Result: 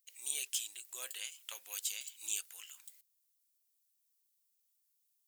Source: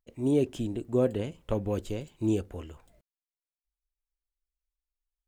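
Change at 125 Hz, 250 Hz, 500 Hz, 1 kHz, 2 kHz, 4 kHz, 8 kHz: under -40 dB, under -40 dB, -34.0 dB, -16.0 dB, +1.5 dB, +6.5 dB, +15.0 dB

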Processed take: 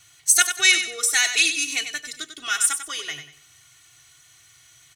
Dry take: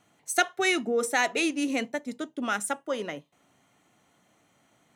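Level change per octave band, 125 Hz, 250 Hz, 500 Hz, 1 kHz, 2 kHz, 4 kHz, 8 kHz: no reading, -13.0 dB, -12.0 dB, -2.0 dB, +7.5 dB, +12.5 dB, +15.5 dB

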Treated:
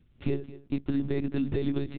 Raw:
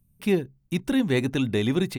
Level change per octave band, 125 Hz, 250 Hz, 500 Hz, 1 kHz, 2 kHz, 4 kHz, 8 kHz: -4.5 dB, -5.5 dB, -7.0 dB, -10.0 dB, -13.5 dB, -15.0 dB, under -35 dB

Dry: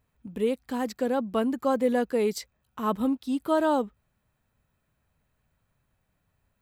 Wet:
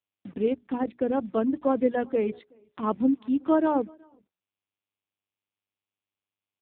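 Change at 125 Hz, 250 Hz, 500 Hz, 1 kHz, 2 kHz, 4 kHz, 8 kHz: no reading, +2.0 dB, -0.5 dB, -1.0 dB, -3.5 dB, under -10 dB, under -35 dB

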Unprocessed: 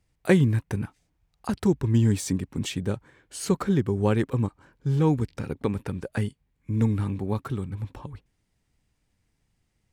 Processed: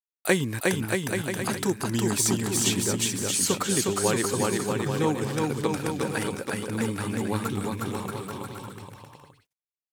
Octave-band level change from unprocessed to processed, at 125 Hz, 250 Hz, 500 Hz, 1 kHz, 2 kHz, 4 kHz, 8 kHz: -6.0 dB, -1.5 dB, +2.0 dB, +5.5 dB, +7.0 dB, +10.0 dB, +14.0 dB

